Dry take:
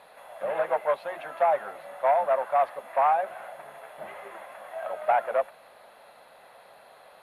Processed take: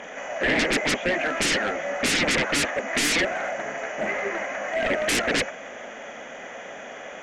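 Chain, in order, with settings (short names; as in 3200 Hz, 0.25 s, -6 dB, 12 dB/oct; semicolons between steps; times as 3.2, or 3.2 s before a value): nonlinear frequency compression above 2200 Hz 1.5:1; sine folder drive 20 dB, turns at -11.5 dBFS; graphic EQ 125/250/1000/2000/4000 Hz -6/+11/-9/+7/-3 dB; gain -8.5 dB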